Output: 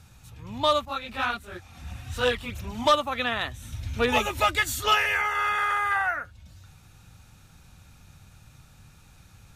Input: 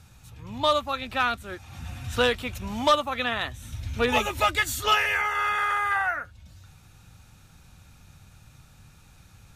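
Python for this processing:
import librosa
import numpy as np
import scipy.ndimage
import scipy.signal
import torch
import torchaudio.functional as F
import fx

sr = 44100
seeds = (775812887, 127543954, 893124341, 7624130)

y = fx.chorus_voices(x, sr, voices=2, hz=1.4, base_ms=25, depth_ms=3.0, mix_pct=65, at=(0.85, 2.86))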